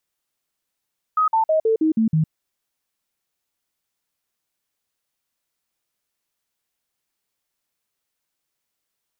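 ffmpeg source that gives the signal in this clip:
ffmpeg -f lavfi -i "aevalsrc='0.188*clip(min(mod(t,0.16),0.11-mod(t,0.16))/0.005,0,1)*sin(2*PI*1260*pow(2,-floor(t/0.16)/2)*mod(t,0.16))':duration=1.12:sample_rate=44100" out.wav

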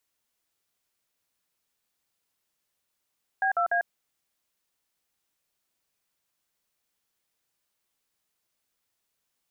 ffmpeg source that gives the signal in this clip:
ffmpeg -f lavfi -i "aevalsrc='0.0596*clip(min(mod(t,0.147),0.097-mod(t,0.147))/0.002,0,1)*(eq(floor(t/0.147),0)*(sin(2*PI*770*mod(t,0.147))+sin(2*PI*1633*mod(t,0.147)))+eq(floor(t/0.147),1)*(sin(2*PI*697*mod(t,0.147))+sin(2*PI*1336*mod(t,0.147)))+eq(floor(t/0.147),2)*(sin(2*PI*697*mod(t,0.147))+sin(2*PI*1633*mod(t,0.147))))':duration=0.441:sample_rate=44100" out.wav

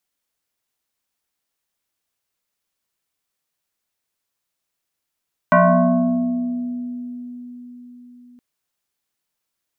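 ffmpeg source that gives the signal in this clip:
ffmpeg -f lavfi -i "aevalsrc='0.376*pow(10,-3*t/4.8)*sin(2*PI*245*t+3.1*pow(10,-3*t/2.46)*sin(2*PI*1.73*245*t))':duration=2.87:sample_rate=44100" out.wav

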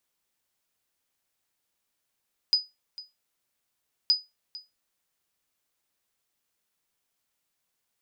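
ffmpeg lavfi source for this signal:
ffmpeg -f lavfi -i "aevalsrc='0.211*(sin(2*PI*4970*mod(t,1.57))*exp(-6.91*mod(t,1.57)/0.21)+0.112*sin(2*PI*4970*max(mod(t,1.57)-0.45,0))*exp(-6.91*max(mod(t,1.57)-0.45,0)/0.21))':duration=3.14:sample_rate=44100" out.wav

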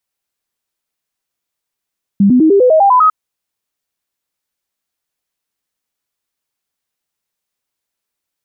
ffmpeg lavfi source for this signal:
ffmpeg -f lavfi -i "aevalsrc='0.562*clip(min(mod(t,0.1),0.1-mod(t,0.1))/0.005,0,1)*sin(2*PI*199*pow(2,floor(t/0.1)/3)*mod(t,0.1))':duration=0.9:sample_rate=44100" out.wav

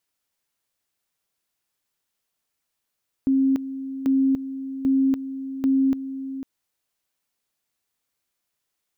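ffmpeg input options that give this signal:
ffmpeg -f lavfi -i "aevalsrc='pow(10,(-16-12.5*gte(mod(t,0.79),0.29))/20)*sin(2*PI*268*t)':duration=3.16:sample_rate=44100" out.wav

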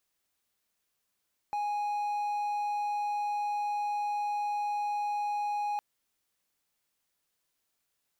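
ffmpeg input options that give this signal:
ffmpeg -f lavfi -i "aevalsrc='0.0447*(1-4*abs(mod(828*t+0.25,1)-0.5))':duration=4.26:sample_rate=44100" out.wav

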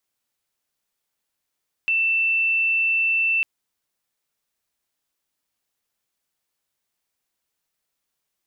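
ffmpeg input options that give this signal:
ffmpeg -f lavfi -i "sine=frequency=2670:duration=1.55:sample_rate=44100,volume=0.56dB" out.wav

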